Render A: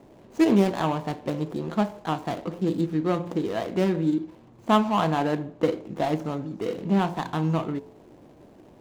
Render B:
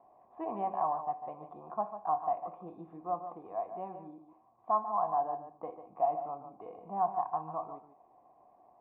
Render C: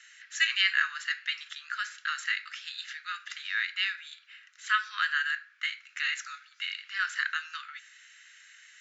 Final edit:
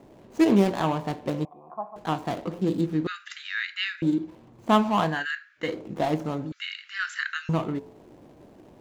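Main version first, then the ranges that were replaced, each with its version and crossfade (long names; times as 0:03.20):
A
0:01.45–0:01.96: punch in from B
0:03.07–0:04.02: punch in from C
0:05.14–0:05.68: punch in from C, crossfade 0.24 s
0:06.52–0:07.49: punch in from C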